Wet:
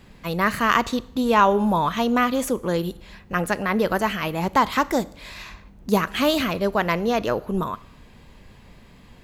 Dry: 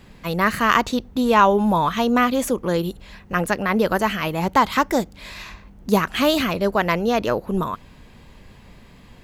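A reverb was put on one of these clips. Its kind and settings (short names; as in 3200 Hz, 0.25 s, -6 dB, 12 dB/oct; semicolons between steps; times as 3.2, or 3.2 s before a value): Schroeder reverb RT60 0.69 s, combs from 27 ms, DRR 19 dB; gain -2 dB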